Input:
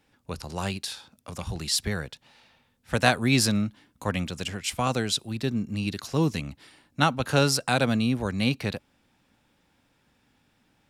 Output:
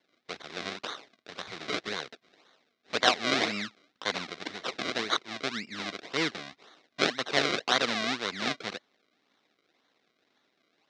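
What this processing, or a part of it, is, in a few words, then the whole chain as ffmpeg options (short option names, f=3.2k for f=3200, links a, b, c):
circuit-bent sampling toy: -af "acrusher=samples=34:mix=1:aa=0.000001:lfo=1:lforange=34:lforate=1.9,highpass=440,equalizer=f=550:t=q:w=4:g=-5,equalizer=f=890:t=q:w=4:g=-7,equalizer=f=2.1k:t=q:w=4:g=6,equalizer=f=3.8k:t=q:w=4:g=9,equalizer=f=5.4k:t=q:w=4:g=3,lowpass=f=6k:w=0.5412,lowpass=f=6k:w=1.3066"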